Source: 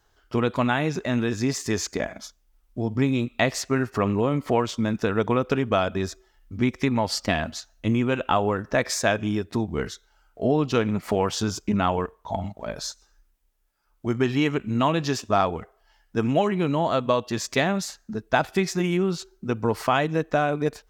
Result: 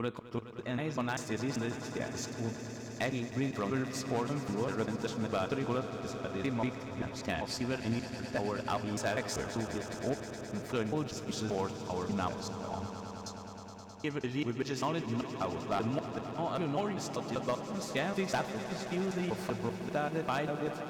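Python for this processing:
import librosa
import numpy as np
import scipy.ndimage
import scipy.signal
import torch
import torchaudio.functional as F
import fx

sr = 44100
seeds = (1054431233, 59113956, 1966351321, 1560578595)

p1 = fx.block_reorder(x, sr, ms=195.0, group=3)
p2 = fx.hum_notches(p1, sr, base_hz=50, count=2)
p3 = fx.comb_fb(p2, sr, f0_hz=110.0, decay_s=1.7, harmonics='all', damping=0.0, mix_pct=50)
p4 = 10.0 ** (-18.0 / 20.0) * (np.abs((p3 / 10.0 ** (-18.0 / 20.0) + 3.0) % 4.0 - 2.0) - 1.0)
p5 = p4 + fx.echo_swell(p4, sr, ms=105, loudest=5, wet_db=-14.5, dry=0)
y = p5 * librosa.db_to_amplitude(-5.5)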